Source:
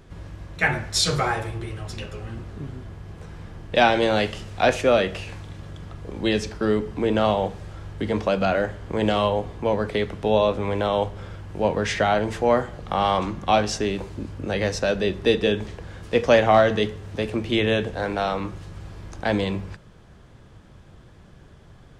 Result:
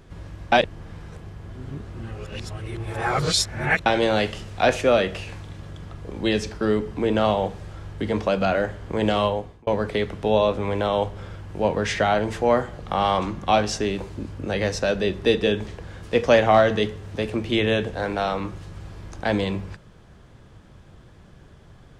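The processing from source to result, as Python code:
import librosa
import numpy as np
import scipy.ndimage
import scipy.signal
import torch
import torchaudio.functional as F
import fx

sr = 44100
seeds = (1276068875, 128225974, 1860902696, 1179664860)

y = fx.edit(x, sr, fx.reverse_span(start_s=0.52, length_s=3.34),
    fx.fade_out_span(start_s=9.25, length_s=0.42), tone=tone)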